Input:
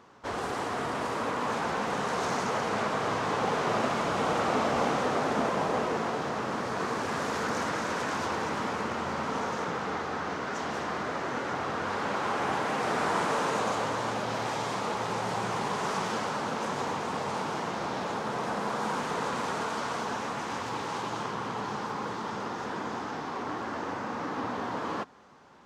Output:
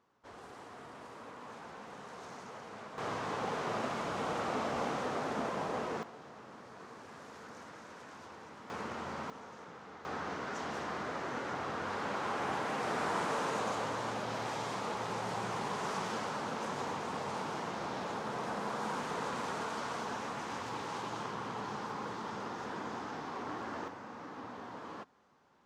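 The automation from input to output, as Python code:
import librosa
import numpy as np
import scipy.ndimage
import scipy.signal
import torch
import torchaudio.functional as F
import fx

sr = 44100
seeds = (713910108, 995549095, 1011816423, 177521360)

y = fx.gain(x, sr, db=fx.steps((0.0, -18.0), (2.98, -8.0), (6.03, -19.5), (8.7, -8.5), (9.3, -18.0), (10.05, -6.0), (23.88, -12.5)))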